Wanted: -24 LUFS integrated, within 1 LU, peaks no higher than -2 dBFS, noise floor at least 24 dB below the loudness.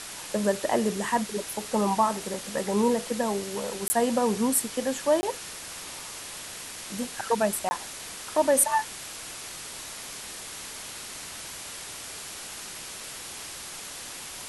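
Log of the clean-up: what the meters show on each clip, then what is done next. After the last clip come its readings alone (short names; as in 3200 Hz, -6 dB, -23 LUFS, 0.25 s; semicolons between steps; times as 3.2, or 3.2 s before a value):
dropouts 3; longest dropout 20 ms; noise floor -40 dBFS; noise floor target -53 dBFS; loudness -29.0 LUFS; peak -8.5 dBFS; loudness target -24.0 LUFS
-> interpolate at 3.88/5.21/7.69, 20 ms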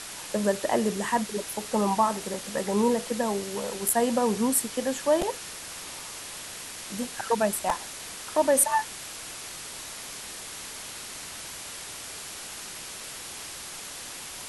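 dropouts 0; noise floor -40 dBFS; noise floor target -53 dBFS
-> denoiser 13 dB, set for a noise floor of -40 dBFS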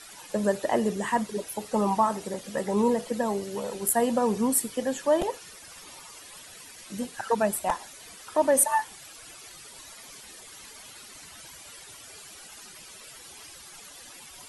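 noise floor -47 dBFS; noise floor target -51 dBFS
-> denoiser 6 dB, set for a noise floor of -47 dBFS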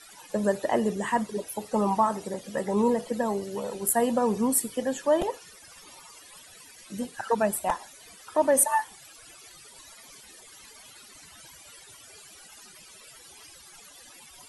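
noise floor -51 dBFS; loudness -27.0 LUFS; peak -8.5 dBFS; loudness target -24.0 LUFS
-> gain +3 dB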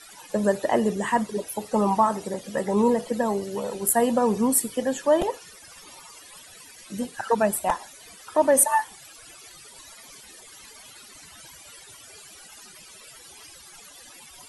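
loudness -24.0 LUFS; peak -5.5 dBFS; noise floor -48 dBFS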